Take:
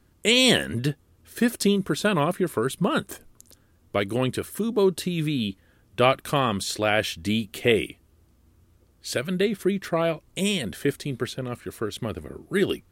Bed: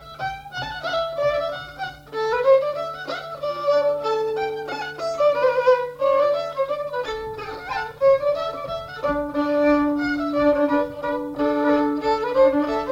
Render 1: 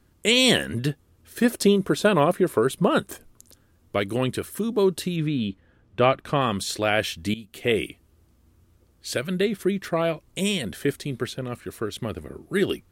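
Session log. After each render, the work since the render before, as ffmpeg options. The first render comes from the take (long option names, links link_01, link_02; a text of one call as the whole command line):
ffmpeg -i in.wav -filter_complex "[0:a]asettb=1/sr,asplit=3[link_01][link_02][link_03];[link_01]atrim=end=1.444[link_04];[link_02]atrim=start=1.44:end=2.99,asetpts=PTS-STARTPTS,afade=type=in:duration=0.004:curve=qsin,afade=type=out:start_time=1.546:duration=0.004:curve=qsin,equalizer=frequency=550:width_type=o:width=1.8:gain=5.5[link_05];[link_03]atrim=start=2.986[link_06];[link_04][link_05]acrossfade=duration=0.004:curve1=hsin:curve2=qsin[link_07];[link_07][link_06]acrossfade=duration=0.004:curve1=qsin:curve2=hsin,asettb=1/sr,asplit=3[link_08][link_09][link_10];[link_08]atrim=end=5.164[link_11];[link_09]atrim=start=5.16:end=6.41,asetpts=PTS-STARTPTS,afade=type=in:duration=0.004:curve=qsin,afade=type=out:start_time=1.246:duration=0.004:curve=qsin,aemphasis=mode=reproduction:type=75fm[link_12];[link_10]atrim=start=6.406[link_13];[link_11][link_12]acrossfade=duration=0.004:curve1=hsin:curve2=qsin[link_14];[link_14][link_13]acrossfade=duration=0.004:curve1=qsin:curve2=hsin,asplit=2[link_15][link_16];[link_15]atrim=end=7.34,asetpts=PTS-STARTPTS,afade=type=out:start_time=7.336:duration=0.004:curve=hsin:silence=0.141254[link_17];[link_16]atrim=start=7.34,asetpts=PTS-STARTPTS,afade=type=in:duration=0.5:silence=0.141254[link_18];[link_17][link_18]concat=n=2:v=0:a=1" out.wav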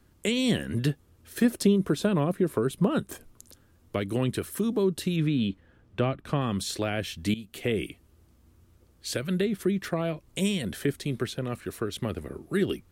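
ffmpeg -i in.wav -filter_complex "[0:a]acrossover=split=310[link_01][link_02];[link_02]acompressor=threshold=-30dB:ratio=4[link_03];[link_01][link_03]amix=inputs=2:normalize=0" out.wav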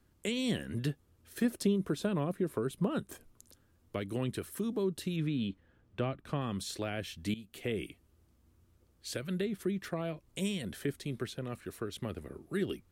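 ffmpeg -i in.wav -af "volume=-7.5dB" out.wav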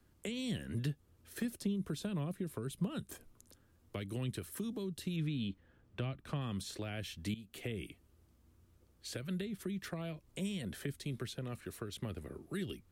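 ffmpeg -i in.wav -filter_complex "[0:a]acrossover=split=180|2300[link_01][link_02][link_03];[link_02]acompressor=threshold=-42dB:ratio=6[link_04];[link_03]alimiter=level_in=11.5dB:limit=-24dB:level=0:latency=1:release=342,volume=-11.5dB[link_05];[link_01][link_04][link_05]amix=inputs=3:normalize=0" out.wav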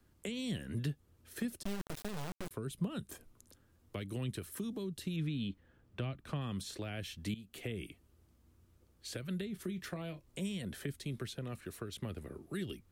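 ffmpeg -i in.wav -filter_complex "[0:a]asettb=1/sr,asplit=3[link_01][link_02][link_03];[link_01]atrim=end=1.634[link_04];[link_02]atrim=start=1.63:end=2.51,asetpts=PTS-STARTPTS,afade=type=in:duration=0.004:curve=qsin,afade=type=out:start_time=0.876:duration=0.004:curve=qsin,acrusher=bits=4:dc=4:mix=0:aa=0.000001[link_05];[link_03]atrim=start=2.506[link_06];[link_04][link_05]acrossfade=duration=0.004:curve1=hsin:curve2=qsin[link_07];[link_07][link_06]acrossfade=duration=0.004:curve1=qsin:curve2=hsin,asettb=1/sr,asplit=3[link_08][link_09][link_10];[link_08]atrim=end=9.514[link_11];[link_09]atrim=start=9.51:end=10.4,asetpts=PTS-STARTPTS,afade=type=in:duration=0.004:curve=qsin,afade=type=out:start_time=0.886:duration=0.004:curve=qsin,asplit=2[link_12][link_13];[link_13]adelay=28,volume=-12dB[link_14];[link_12][link_14]amix=inputs=2:normalize=0,atrim=end_sample=39249[link_15];[link_10]atrim=start=10.396[link_16];[link_11][link_15]acrossfade=duration=0.004:curve1=hsin:curve2=qsin[link_17];[link_17][link_16]acrossfade=duration=0.004:curve1=qsin:curve2=hsin" out.wav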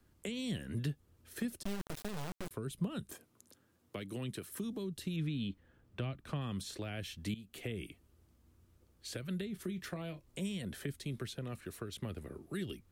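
ffmpeg -i in.wav -filter_complex "[0:a]asettb=1/sr,asplit=3[link_01][link_02][link_03];[link_01]atrim=end=3.124[link_04];[link_02]atrim=start=3.12:end=4.51,asetpts=PTS-STARTPTS,afade=type=in:duration=0.004:curve=qsin,afade=type=out:start_time=1.386:duration=0.004:curve=qsin,highpass=140[link_05];[link_03]atrim=start=4.506[link_06];[link_04][link_05]acrossfade=duration=0.004:curve1=hsin:curve2=qsin[link_07];[link_07][link_06]acrossfade=duration=0.004:curve1=qsin:curve2=hsin" out.wav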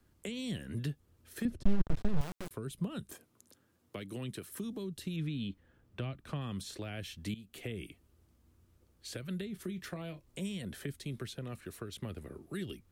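ffmpeg -i in.wav -filter_complex "[0:a]asettb=1/sr,asplit=3[link_01][link_02][link_03];[link_01]atrim=end=1.454[link_04];[link_02]atrim=start=1.45:end=2.21,asetpts=PTS-STARTPTS,afade=type=in:duration=0.004:curve=qsin,afade=type=out:start_time=0.756:duration=0.004:curve=qsin,aemphasis=mode=reproduction:type=riaa[link_05];[link_03]atrim=start=2.206[link_06];[link_04][link_05]acrossfade=duration=0.004:curve1=hsin:curve2=qsin[link_07];[link_07][link_06]acrossfade=duration=0.004:curve1=qsin:curve2=hsin" out.wav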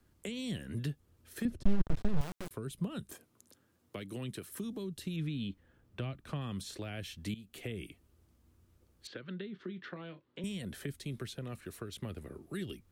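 ffmpeg -i in.wav -filter_complex "[0:a]asettb=1/sr,asplit=3[link_01][link_02][link_03];[link_01]atrim=end=9.074[link_04];[link_02]atrim=start=9.07:end=10.44,asetpts=PTS-STARTPTS,afade=type=in:duration=0.004:curve=qsin,afade=type=out:start_time=1.366:duration=0.004:curve=qsin,highpass=210,equalizer=frequency=670:width_type=q:width=4:gain=-7,equalizer=frequency=1500:width_type=q:width=4:gain=3,equalizer=frequency=2400:width_type=q:width=4:gain=-5,lowpass=frequency=3700:width=0.5412,lowpass=frequency=3700:width=1.3066[link_05];[link_03]atrim=start=10.436[link_06];[link_04][link_05]acrossfade=duration=0.004:curve1=hsin:curve2=qsin[link_07];[link_07][link_06]acrossfade=duration=0.004:curve1=qsin:curve2=hsin" out.wav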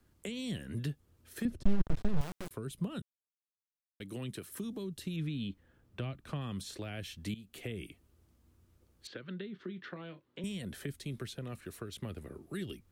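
ffmpeg -i in.wav -filter_complex "[0:a]asplit=3[link_01][link_02][link_03];[link_01]atrim=end=3.02,asetpts=PTS-STARTPTS,afade=type=out:start_time=3.016:duration=0.004:curve=hsin[link_04];[link_02]atrim=start=3.02:end=4,asetpts=PTS-STARTPTS,volume=0[link_05];[link_03]atrim=start=4,asetpts=PTS-STARTPTS,afade=type=in:duration=0.004:curve=hsin[link_06];[link_04][link_05][link_06]concat=n=3:v=0:a=1" out.wav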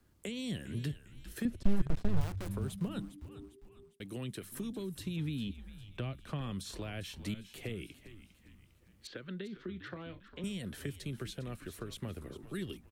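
ffmpeg -i in.wav -filter_complex "[0:a]asplit=5[link_01][link_02][link_03][link_04][link_05];[link_02]adelay=403,afreqshift=-100,volume=-13dB[link_06];[link_03]adelay=806,afreqshift=-200,volume=-20.1dB[link_07];[link_04]adelay=1209,afreqshift=-300,volume=-27.3dB[link_08];[link_05]adelay=1612,afreqshift=-400,volume=-34.4dB[link_09];[link_01][link_06][link_07][link_08][link_09]amix=inputs=5:normalize=0" out.wav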